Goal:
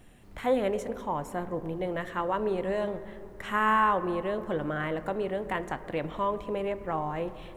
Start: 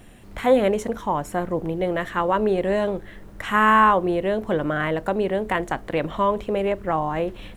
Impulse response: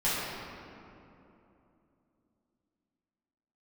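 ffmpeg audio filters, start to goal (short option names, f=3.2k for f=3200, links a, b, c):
-filter_complex "[0:a]asplit=2[a][b];[1:a]atrim=start_sample=2205,lowpass=2.7k[c];[b][c]afir=irnorm=-1:irlink=0,volume=-23dB[d];[a][d]amix=inputs=2:normalize=0,volume=-8.5dB"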